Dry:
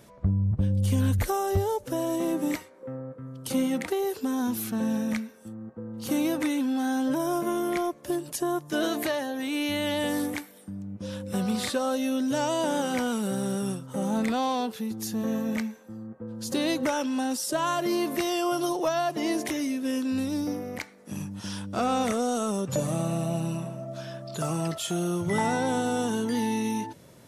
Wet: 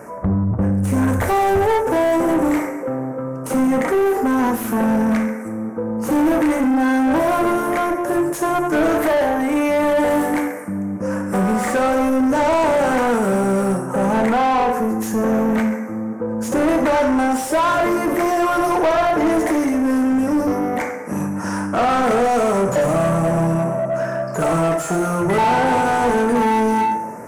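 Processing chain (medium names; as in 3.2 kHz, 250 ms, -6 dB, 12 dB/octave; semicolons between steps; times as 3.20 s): Butterworth band-stop 3.6 kHz, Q 0.68; two-slope reverb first 0.72 s, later 2.3 s, DRR 3 dB; overdrive pedal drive 26 dB, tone 1.8 kHz, clips at -12 dBFS; trim +3 dB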